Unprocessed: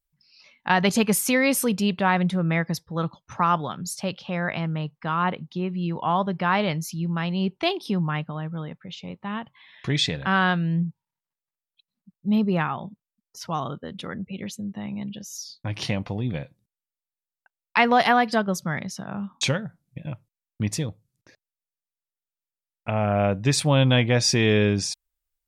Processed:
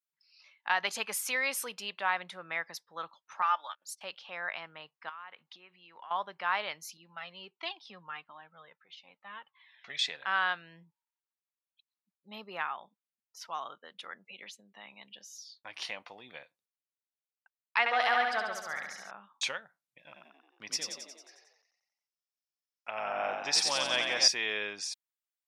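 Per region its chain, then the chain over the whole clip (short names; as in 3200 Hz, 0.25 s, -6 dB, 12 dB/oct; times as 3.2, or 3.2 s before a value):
3.42–4.01 gate -33 dBFS, range -25 dB + HPF 770 Hz + comb 3.4 ms, depth 59%
5.09–6.11 bell 1900 Hz +7 dB 2 oct + compressor 8:1, threshold -35 dBFS
6.97–9.99 LPF 5900 Hz 24 dB/oct + dynamic EQ 220 Hz, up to +5 dB, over -37 dBFS, Q 1.4 + cascading flanger falling 1.5 Hz
14.25–15.6 high shelf 9400 Hz -9.5 dB + three-band squash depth 70%
17.79–19.11 high shelf 6400 Hz -6.5 dB + notch 990 Hz, Q 10 + flutter echo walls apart 11.9 m, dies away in 0.96 s
19.99–24.28 bell 5300 Hz +13.5 dB 0.31 oct + frequency-shifting echo 90 ms, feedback 58%, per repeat +42 Hz, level -4 dB
whole clip: HPF 960 Hz 12 dB/oct; high shelf 5300 Hz -6 dB; gain -5 dB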